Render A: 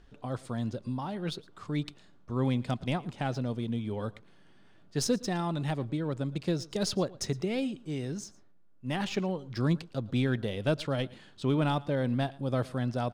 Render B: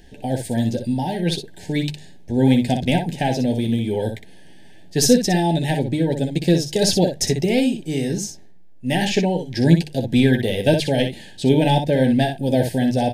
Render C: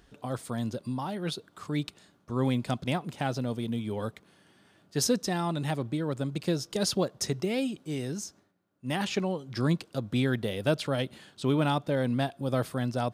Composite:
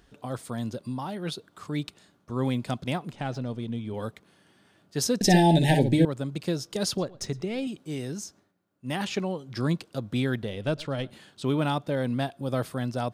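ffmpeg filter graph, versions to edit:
-filter_complex "[0:a]asplit=3[a][b][c];[2:a]asplit=5[d][e][f][g][h];[d]atrim=end=3.122[i];[a]atrim=start=3.118:end=3.942[j];[e]atrim=start=3.938:end=5.212[k];[1:a]atrim=start=5.208:end=6.052[l];[f]atrim=start=6.048:end=6.982[m];[b]atrim=start=6.978:end=7.672[n];[g]atrim=start=7.668:end=10.432[o];[c]atrim=start=10.428:end=11.102[p];[h]atrim=start=11.098[q];[i][j]acrossfade=d=0.004:c1=hsin:c2=hsin[r];[r][k]acrossfade=d=0.004:c1=hsin:c2=hsin[s];[s][l]acrossfade=d=0.004:c1=hsin:c2=hsin[t];[t][m]acrossfade=d=0.004:c1=hsin:c2=hsin[u];[u][n]acrossfade=d=0.004:c1=hsin:c2=hsin[v];[v][o]acrossfade=d=0.004:c1=hsin:c2=hsin[w];[w][p]acrossfade=d=0.004:c1=hsin:c2=hsin[x];[x][q]acrossfade=d=0.004:c1=hsin:c2=hsin"

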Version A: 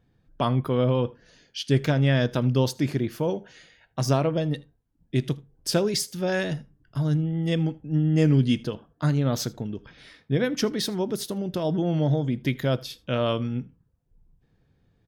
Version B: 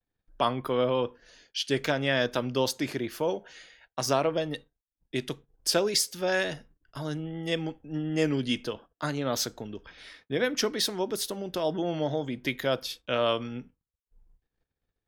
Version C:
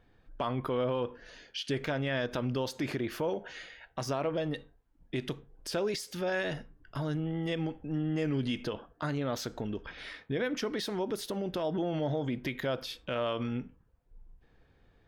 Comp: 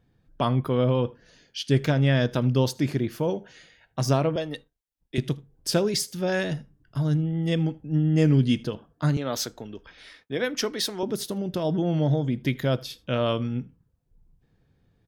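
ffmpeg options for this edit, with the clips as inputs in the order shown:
-filter_complex "[1:a]asplit=2[a][b];[0:a]asplit=3[c][d][e];[c]atrim=end=4.362[f];[a]atrim=start=4.358:end=5.182[g];[d]atrim=start=5.178:end=9.172[h];[b]atrim=start=9.168:end=11.032[i];[e]atrim=start=11.028[j];[f][g]acrossfade=d=0.004:c1=hsin:c2=hsin[k];[k][h]acrossfade=d=0.004:c1=hsin:c2=hsin[l];[l][i]acrossfade=d=0.004:c1=hsin:c2=hsin[m];[m][j]acrossfade=d=0.004:c1=hsin:c2=hsin"

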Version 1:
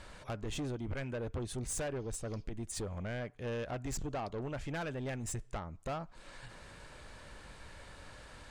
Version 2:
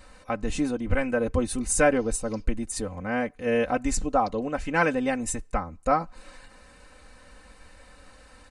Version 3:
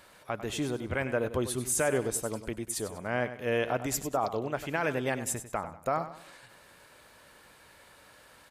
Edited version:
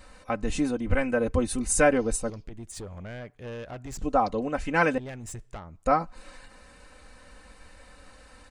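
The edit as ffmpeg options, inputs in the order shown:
-filter_complex "[0:a]asplit=2[a][b];[1:a]asplit=3[c][d][e];[c]atrim=end=2.302[f];[a]atrim=start=2.298:end=4.022[g];[d]atrim=start=4.018:end=4.982[h];[b]atrim=start=4.978:end=5.852[i];[e]atrim=start=5.848[j];[f][g]acrossfade=d=0.004:c1=hsin:c2=hsin[k];[k][h]acrossfade=d=0.004:c1=hsin:c2=hsin[l];[l][i]acrossfade=d=0.004:c1=hsin:c2=hsin[m];[m][j]acrossfade=d=0.004:c1=hsin:c2=hsin"

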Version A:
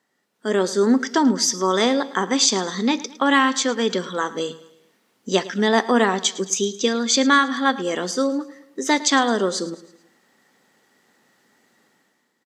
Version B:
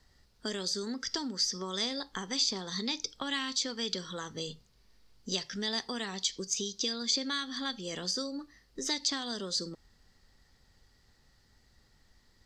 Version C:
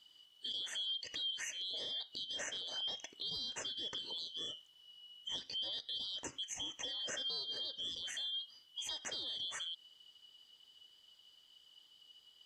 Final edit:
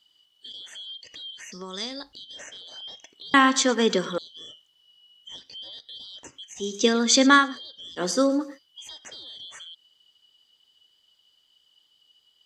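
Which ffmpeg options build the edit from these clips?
-filter_complex "[0:a]asplit=3[a][b][c];[2:a]asplit=5[d][e][f][g][h];[d]atrim=end=1.522[i];[1:a]atrim=start=1.518:end=2.132[j];[e]atrim=start=2.128:end=3.342[k];[a]atrim=start=3.338:end=4.182[l];[f]atrim=start=4.178:end=6.79[m];[b]atrim=start=6.55:end=7.59[n];[g]atrim=start=7.35:end=8.02[o];[c]atrim=start=7.96:end=8.59[p];[h]atrim=start=8.53[q];[i][j]acrossfade=d=0.004:c1=hsin:c2=hsin[r];[r][k]acrossfade=d=0.004:c1=hsin:c2=hsin[s];[s][l]acrossfade=d=0.004:c1=hsin:c2=hsin[t];[t][m]acrossfade=d=0.004:c1=hsin:c2=hsin[u];[u][n]acrossfade=d=0.24:c1=tri:c2=tri[v];[v][o]acrossfade=d=0.24:c1=tri:c2=tri[w];[w][p]acrossfade=d=0.06:c1=tri:c2=tri[x];[x][q]acrossfade=d=0.06:c1=tri:c2=tri"

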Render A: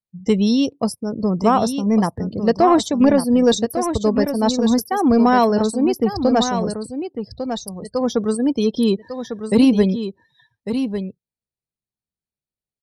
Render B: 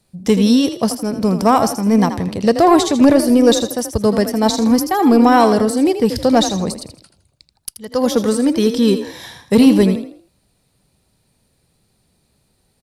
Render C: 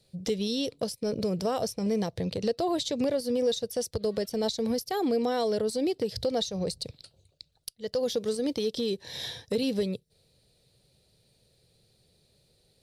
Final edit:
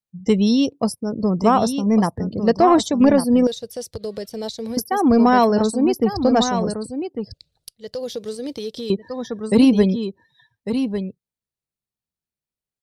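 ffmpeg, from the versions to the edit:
-filter_complex "[2:a]asplit=2[a][b];[0:a]asplit=3[c][d][e];[c]atrim=end=3.472[f];[a]atrim=start=3.468:end=4.772[g];[d]atrim=start=4.768:end=7.342[h];[b]atrim=start=7.338:end=8.902[i];[e]atrim=start=8.898[j];[f][g]acrossfade=d=0.004:c1=hsin:c2=hsin[k];[k][h]acrossfade=d=0.004:c1=hsin:c2=hsin[l];[l][i]acrossfade=d=0.004:c1=hsin:c2=hsin[m];[m][j]acrossfade=d=0.004:c1=hsin:c2=hsin"

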